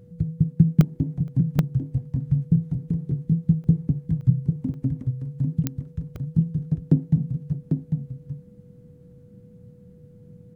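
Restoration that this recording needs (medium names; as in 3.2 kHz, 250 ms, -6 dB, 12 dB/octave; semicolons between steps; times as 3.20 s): de-click; band-stop 490 Hz, Q 30; interpolate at 0.81/1.28/1.59/3.64/4.21/4.74/6.16 s, 1.1 ms; inverse comb 797 ms -5.5 dB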